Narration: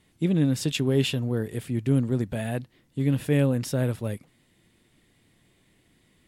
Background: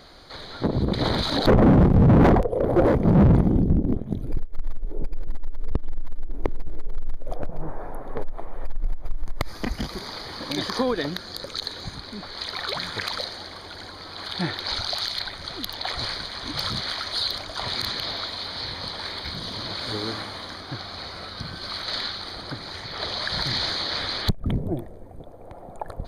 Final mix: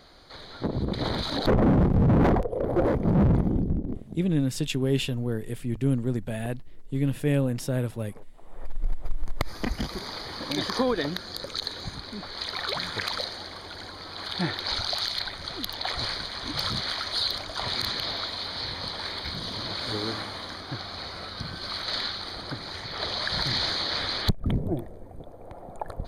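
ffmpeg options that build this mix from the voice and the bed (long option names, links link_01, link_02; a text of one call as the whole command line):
ffmpeg -i stem1.wav -i stem2.wav -filter_complex "[0:a]adelay=3950,volume=-2dB[link_01];[1:a]volume=12.5dB,afade=type=out:start_time=3.54:duration=0.77:silence=0.211349,afade=type=in:start_time=8.4:duration=0.49:silence=0.133352[link_02];[link_01][link_02]amix=inputs=2:normalize=0" out.wav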